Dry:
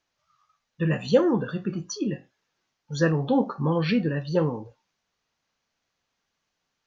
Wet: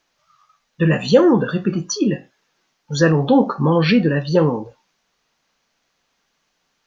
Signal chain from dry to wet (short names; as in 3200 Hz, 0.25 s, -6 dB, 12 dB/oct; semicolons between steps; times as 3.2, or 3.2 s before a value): bell 91 Hz -11.5 dB 0.66 oct; in parallel at +0.5 dB: limiter -17.5 dBFS, peak gain reduction 9.5 dB; on the sum: gain +4 dB